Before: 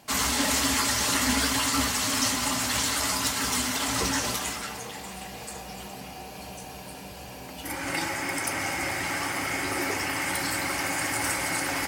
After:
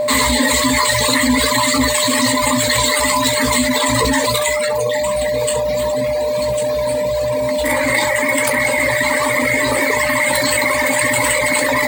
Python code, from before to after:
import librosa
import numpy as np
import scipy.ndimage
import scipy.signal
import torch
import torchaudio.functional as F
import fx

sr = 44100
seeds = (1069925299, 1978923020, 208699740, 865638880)

p1 = fx.dereverb_blind(x, sr, rt60_s=1.7)
p2 = fx.highpass(p1, sr, hz=99.0, slope=6)
p3 = fx.dereverb_blind(p2, sr, rt60_s=0.83)
p4 = fx.ripple_eq(p3, sr, per_octave=1.0, db=17)
p5 = fx.sample_hold(p4, sr, seeds[0], rate_hz=11000.0, jitter_pct=0)
p6 = p4 + (p5 * librosa.db_to_amplitude(-7.5))
p7 = p6 + 10.0 ** (-28.0 / 20.0) * np.sin(2.0 * np.pi * 600.0 * np.arange(len(p6)) / sr)
p8 = p7 + fx.room_early_taps(p7, sr, ms=(16, 67), db=(-9.0, -12.5), dry=0)
p9 = fx.env_flatten(p8, sr, amount_pct=70)
y = p9 * librosa.db_to_amplitude(1.5)